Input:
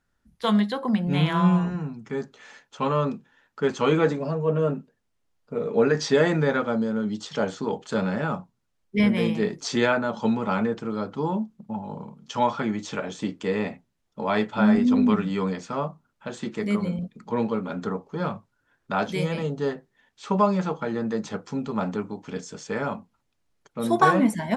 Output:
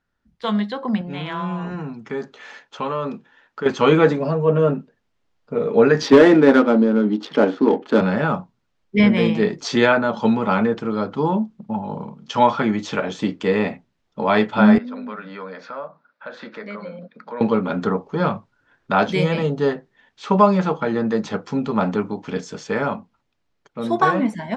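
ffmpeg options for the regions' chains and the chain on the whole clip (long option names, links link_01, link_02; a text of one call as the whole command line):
ffmpeg -i in.wav -filter_complex "[0:a]asettb=1/sr,asplit=3[link_01][link_02][link_03];[link_01]atrim=end=1.014[link_04];[link_02]atrim=start=1.01:end=3.66,asetpts=PTS-STARTPTS,afade=type=in:duration=0.004:curve=qsin,afade=type=out:start_time=2.646:duration=0.004:curve=qsin,bass=frequency=250:gain=-6,treble=frequency=4000:gain=-1,acompressor=threshold=-31dB:ratio=2.5:attack=3.2:release=140:knee=1:detection=peak[link_05];[link_03]atrim=start=3.656[link_06];[link_04][link_05]acrossfade=duration=0.004:curve1=hsin:curve2=qsin[link_07];[link_07][link_06]acrossfade=duration=0.004:curve1=qsin:curve2=hsin,asettb=1/sr,asplit=3[link_08][link_09][link_10];[link_08]atrim=end=6.024[link_11];[link_09]atrim=start=6.02:end=8.01,asetpts=PTS-STARTPTS,afade=type=in:duration=0.004:curve=qsin,afade=type=out:start_time=1.986:duration=0.004:curve=qsin,highpass=frequency=280:width_type=q:width=3.4,asoftclip=type=hard:threshold=-10.5dB,adynamicsmooth=sensitivity=8:basefreq=1500[link_12];[link_10]atrim=start=8.006[link_13];[link_11][link_12]acrossfade=duration=0.004:curve1=hsin:curve2=qsin[link_14];[link_14][link_13]acrossfade=duration=0.004:curve1=qsin:curve2=hsin,asettb=1/sr,asplit=3[link_15][link_16][link_17];[link_15]atrim=end=14.784[link_18];[link_16]atrim=start=14.78:end=17.41,asetpts=PTS-STARTPTS,afade=type=in:duration=0.004:curve=qsin,afade=type=out:start_time=2.626:duration=0.004:curve=qsin,highpass=340,equalizer=frequency=370:width_type=q:width=4:gain=-10,equalizer=frequency=550:width_type=q:width=4:gain=7,equalizer=frequency=790:width_type=q:width=4:gain=-3,equalizer=frequency=1500:width_type=q:width=4:gain=8,equalizer=frequency=3000:width_type=q:width=4:gain=-8,lowpass=frequency=4700:width=0.5412,lowpass=frequency=4700:width=1.3066,acompressor=threshold=-45dB:ratio=2:attack=3.2:release=140:knee=1:detection=peak[link_19];[link_17]atrim=start=17.406[link_20];[link_18][link_19]acrossfade=duration=0.004:curve1=hsin:curve2=qsin[link_21];[link_21][link_20]acrossfade=duration=0.004:curve1=qsin:curve2=hsin,lowpass=4900,lowshelf=frequency=140:gain=-3.5,dynaudnorm=framelen=370:gausssize=7:maxgain=9dB" out.wav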